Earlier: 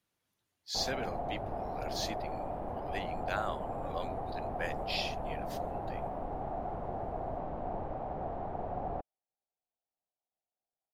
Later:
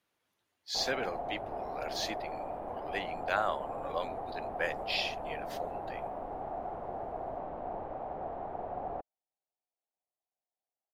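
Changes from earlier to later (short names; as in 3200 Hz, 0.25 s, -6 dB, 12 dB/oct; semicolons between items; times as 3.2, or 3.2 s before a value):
speech +5.0 dB; master: add tone controls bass -9 dB, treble -6 dB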